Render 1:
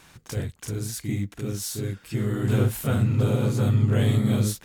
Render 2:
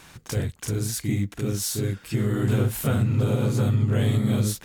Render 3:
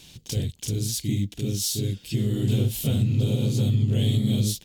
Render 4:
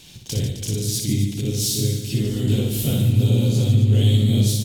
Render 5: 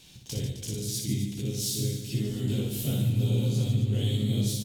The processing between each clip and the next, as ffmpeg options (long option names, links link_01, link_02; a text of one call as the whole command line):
ffmpeg -i in.wav -af "acompressor=threshold=-24dB:ratio=2.5,volume=4dB" out.wav
ffmpeg -i in.wav -af "firequalizer=gain_entry='entry(190,0);entry(1300,-19);entry(3100,6);entry(9000,-1);entry(15000,1)':delay=0.05:min_phase=1" out.wav
ffmpeg -i in.wav -af "aecho=1:1:60|144|261.6|426.2|656.7:0.631|0.398|0.251|0.158|0.1,volume=2.5dB" out.wav
ffmpeg -i in.wav -filter_complex "[0:a]asplit=2[link_01][link_02];[link_02]adelay=15,volume=-7.5dB[link_03];[link_01][link_03]amix=inputs=2:normalize=0,volume=-8.5dB" out.wav